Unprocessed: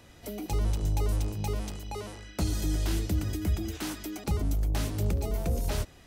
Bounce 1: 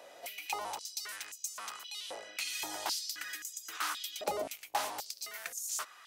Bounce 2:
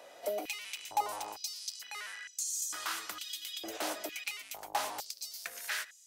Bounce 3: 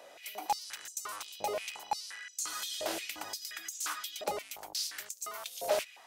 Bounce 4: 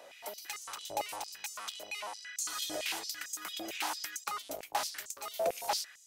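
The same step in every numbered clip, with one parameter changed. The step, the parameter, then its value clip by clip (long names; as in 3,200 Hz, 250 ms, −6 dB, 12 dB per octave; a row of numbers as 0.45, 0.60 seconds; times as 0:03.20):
high-pass on a step sequencer, speed: 3.8, 2.2, 5.7, 8.9 Hertz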